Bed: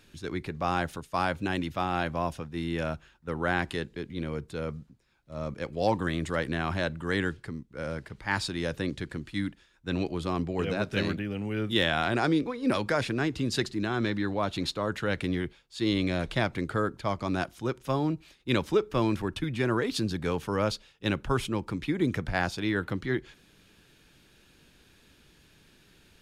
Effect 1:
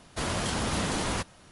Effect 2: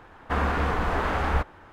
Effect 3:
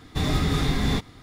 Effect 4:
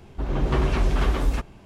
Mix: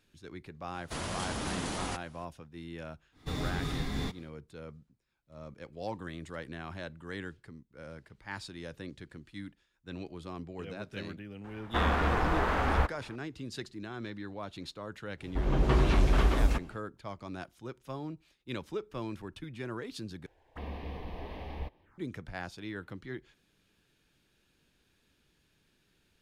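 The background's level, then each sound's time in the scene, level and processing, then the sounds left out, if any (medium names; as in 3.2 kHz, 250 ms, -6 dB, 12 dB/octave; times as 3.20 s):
bed -12 dB
0.74 s: add 1 -6.5 dB
3.11 s: add 3 -11 dB, fades 0.10 s
11.44 s: add 2 -3 dB
15.17 s: add 4 -3 dB, fades 0.10 s
20.26 s: replace with 2 -13.5 dB + touch-sensitive phaser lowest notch 170 Hz, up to 1.4 kHz, full sweep at -27.5 dBFS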